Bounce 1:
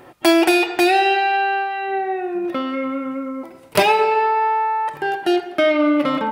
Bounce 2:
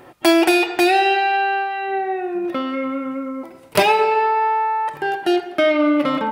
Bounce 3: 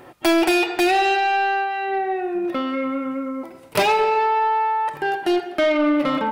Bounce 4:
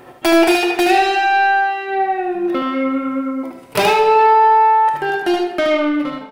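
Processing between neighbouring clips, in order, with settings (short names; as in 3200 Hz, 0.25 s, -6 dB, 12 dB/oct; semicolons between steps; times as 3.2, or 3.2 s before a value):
nothing audible
soft clip -12 dBFS, distortion -16 dB
ending faded out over 0.62 s; echo 75 ms -5 dB; two-slope reverb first 0.61 s, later 3.4 s, from -19 dB, DRR 9.5 dB; gain +2.5 dB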